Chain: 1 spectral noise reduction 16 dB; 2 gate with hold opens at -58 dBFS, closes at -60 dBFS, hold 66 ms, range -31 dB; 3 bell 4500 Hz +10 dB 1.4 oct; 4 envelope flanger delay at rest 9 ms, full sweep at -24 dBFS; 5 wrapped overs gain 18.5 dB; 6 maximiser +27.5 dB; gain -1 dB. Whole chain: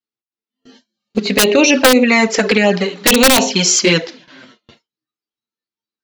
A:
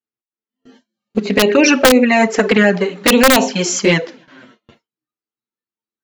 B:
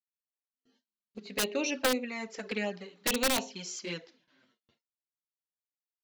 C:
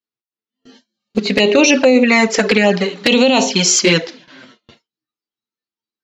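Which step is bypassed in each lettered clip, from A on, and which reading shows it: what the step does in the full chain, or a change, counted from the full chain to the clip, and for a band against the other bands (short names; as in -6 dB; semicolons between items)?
3, 8 kHz band -5.5 dB; 6, crest factor change +3.0 dB; 5, 8 kHz band -1.5 dB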